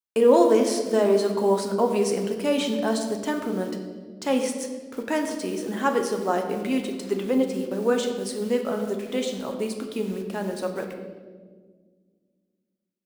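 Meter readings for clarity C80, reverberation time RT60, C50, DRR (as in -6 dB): 8.0 dB, 1.6 s, 6.5 dB, 3.5 dB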